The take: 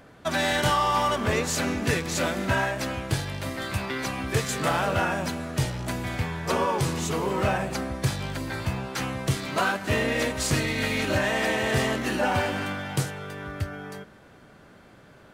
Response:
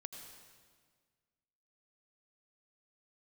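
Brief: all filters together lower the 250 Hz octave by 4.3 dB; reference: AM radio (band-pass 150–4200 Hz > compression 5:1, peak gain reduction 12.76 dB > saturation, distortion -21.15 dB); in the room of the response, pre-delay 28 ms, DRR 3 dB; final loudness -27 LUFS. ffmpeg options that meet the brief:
-filter_complex "[0:a]equalizer=f=250:t=o:g=-4.5,asplit=2[s0][s1];[1:a]atrim=start_sample=2205,adelay=28[s2];[s1][s2]afir=irnorm=-1:irlink=0,volume=1.12[s3];[s0][s3]amix=inputs=2:normalize=0,highpass=150,lowpass=4200,acompressor=threshold=0.0251:ratio=5,asoftclip=threshold=0.0501,volume=2.66"

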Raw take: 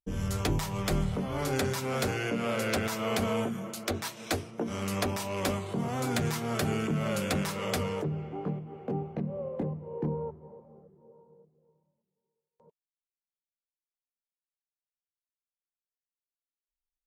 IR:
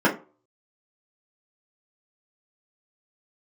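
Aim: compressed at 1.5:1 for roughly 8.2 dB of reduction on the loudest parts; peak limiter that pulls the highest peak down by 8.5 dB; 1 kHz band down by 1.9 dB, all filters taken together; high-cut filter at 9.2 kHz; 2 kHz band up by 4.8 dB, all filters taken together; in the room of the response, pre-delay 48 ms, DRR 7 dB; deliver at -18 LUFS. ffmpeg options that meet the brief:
-filter_complex "[0:a]lowpass=9200,equalizer=f=1000:t=o:g=-5,equalizer=f=2000:t=o:g=7.5,acompressor=threshold=0.00398:ratio=1.5,alimiter=level_in=1.88:limit=0.0631:level=0:latency=1,volume=0.531,asplit=2[s0][s1];[1:a]atrim=start_sample=2205,adelay=48[s2];[s1][s2]afir=irnorm=-1:irlink=0,volume=0.0531[s3];[s0][s3]amix=inputs=2:normalize=0,volume=10.6"

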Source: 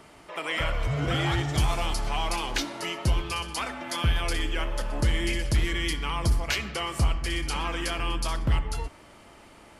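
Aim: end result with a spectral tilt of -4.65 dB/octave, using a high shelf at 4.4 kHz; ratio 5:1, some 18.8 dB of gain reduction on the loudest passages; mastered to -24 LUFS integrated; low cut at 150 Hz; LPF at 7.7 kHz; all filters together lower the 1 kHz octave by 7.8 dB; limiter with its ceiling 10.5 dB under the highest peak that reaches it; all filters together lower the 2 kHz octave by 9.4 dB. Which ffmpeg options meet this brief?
-af "highpass=150,lowpass=7700,equalizer=f=1000:t=o:g=-7.5,equalizer=f=2000:t=o:g=-8.5,highshelf=f=4400:g=-5.5,acompressor=threshold=0.00355:ratio=5,volume=29.9,alimiter=limit=0.188:level=0:latency=1"

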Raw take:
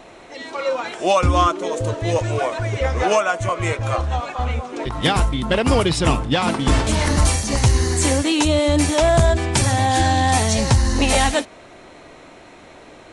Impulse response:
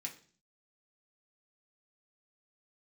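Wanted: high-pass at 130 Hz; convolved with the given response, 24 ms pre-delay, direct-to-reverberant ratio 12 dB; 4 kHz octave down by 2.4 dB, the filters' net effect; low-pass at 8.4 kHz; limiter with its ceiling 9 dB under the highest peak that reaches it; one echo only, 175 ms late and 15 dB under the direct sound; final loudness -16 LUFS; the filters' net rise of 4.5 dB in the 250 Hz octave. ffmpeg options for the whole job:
-filter_complex "[0:a]highpass=130,lowpass=8400,equalizer=f=250:t=o:g=6,equalizer=f=4000:t=o:g=-3,alimiter=limit=0.282:level=0:latency=1,aecho=1:1:175:0.178,asplit=2[s0][s1];[1:a]atrim=start_sample=2205,adelay=24[s2];[s1][s2]afir=irnorm=-1:irlink=0,volume=0.316[s3];[s0][s3]amix=inputs=2:normalize=0,volume=1.78"

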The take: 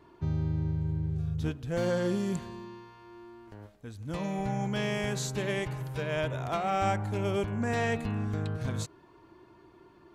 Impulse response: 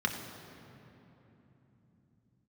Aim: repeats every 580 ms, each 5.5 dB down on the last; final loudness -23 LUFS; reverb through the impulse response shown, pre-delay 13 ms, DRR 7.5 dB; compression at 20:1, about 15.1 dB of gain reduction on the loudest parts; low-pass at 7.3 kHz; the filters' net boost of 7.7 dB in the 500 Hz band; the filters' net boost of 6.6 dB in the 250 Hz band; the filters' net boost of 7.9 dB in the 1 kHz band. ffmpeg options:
-filter_complex "[0:a]lowpass=7300,equalizer=f=250:t=o:g=8,equalizer=f=500:t=o:g=5,equalizer=f=1000:t=o:g=8.5,acompressor=threshold=0.0224:ratio=20,aecho=1:1:580|1160|1740|2320|2900|3480|4060:0.531|0.281|0.149|0.079|0.0419|0.0222|0.0118,asplit=2[s0][s1];[1:a]atrim=start_sample=2205,adelay=13[s2];[s1][s2]afir=irnorm=-1:irlink=0,volume=0.168[s3];[s0][s3]amix=inputs=2:normalize=0,volume=4.47"

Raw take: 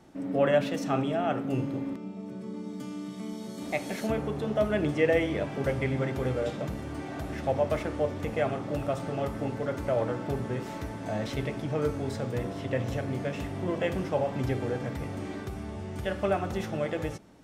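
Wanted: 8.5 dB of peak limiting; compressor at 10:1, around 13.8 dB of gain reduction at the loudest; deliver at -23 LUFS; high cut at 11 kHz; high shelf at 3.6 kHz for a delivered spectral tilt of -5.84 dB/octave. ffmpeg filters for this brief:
-af "lowpass=11000,highshelf=f=3600:g=5.5,acompressor=threshold=0.0224:ratio=10,volume=7.5,alimiter=limit=0.2:level=0:latency=1"

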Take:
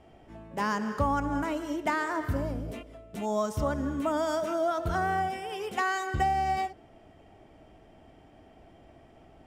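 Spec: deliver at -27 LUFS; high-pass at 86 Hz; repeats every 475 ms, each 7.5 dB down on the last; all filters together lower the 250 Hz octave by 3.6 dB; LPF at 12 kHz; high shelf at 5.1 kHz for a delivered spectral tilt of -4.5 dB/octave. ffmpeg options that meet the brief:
-af "highpass=86,lowpass=12000,equalizer=f=250:t=o:g=-4.5,highshelf=f=5100:g=6.5,aecho=1:1:475|950|1425|1900|2375:0.422|0.177|0.0744|0.0312|0.0131,volume=1.5"

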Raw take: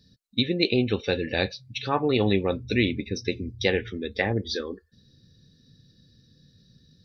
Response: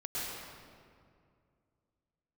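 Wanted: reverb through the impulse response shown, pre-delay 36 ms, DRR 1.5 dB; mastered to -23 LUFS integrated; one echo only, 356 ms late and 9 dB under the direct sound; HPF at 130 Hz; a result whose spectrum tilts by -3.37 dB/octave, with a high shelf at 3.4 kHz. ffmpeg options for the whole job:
-filter_complex "[0:a]highpass=130,highshelf=f=3400:g=3.5,aecho=1:1:356:0.355,asplit=2[s0][s1];[1:a]atrim=start_sample=2205,adelay=36[s2];[s1][s2]afir=irnorm=-1:irlink=0,volume=0.531[s3];[s0][s3]amix=inputs=2:normalize=0,volume=1.06"

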